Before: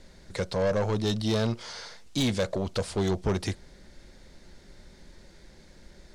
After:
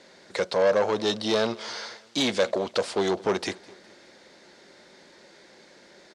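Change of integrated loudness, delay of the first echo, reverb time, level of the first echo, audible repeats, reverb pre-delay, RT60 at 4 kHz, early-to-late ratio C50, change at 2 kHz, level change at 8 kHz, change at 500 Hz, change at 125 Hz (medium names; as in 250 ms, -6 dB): +3.0 dB, 207 ms, no reverb, -23.0 dB, 3, no reverb, no reverb, no reverb, +6.0 dB, +2.0 dB, +5.0 dB, -11.5 dB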